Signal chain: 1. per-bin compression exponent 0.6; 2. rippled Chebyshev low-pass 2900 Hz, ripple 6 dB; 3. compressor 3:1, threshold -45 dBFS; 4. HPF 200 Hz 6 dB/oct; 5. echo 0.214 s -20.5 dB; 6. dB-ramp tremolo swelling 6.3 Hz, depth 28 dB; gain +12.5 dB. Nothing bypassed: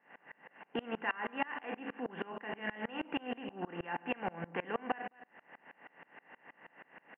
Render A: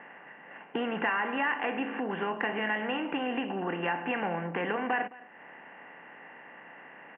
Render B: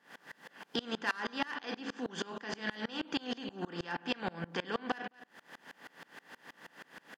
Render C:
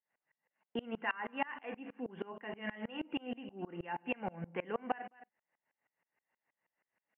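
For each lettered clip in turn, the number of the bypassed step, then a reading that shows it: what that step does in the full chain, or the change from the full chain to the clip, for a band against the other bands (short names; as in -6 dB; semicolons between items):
6, loudness change +8.5 LU; 2, 1 kHz band -3.0 dB; 1, 2 kHz band -2.0 dB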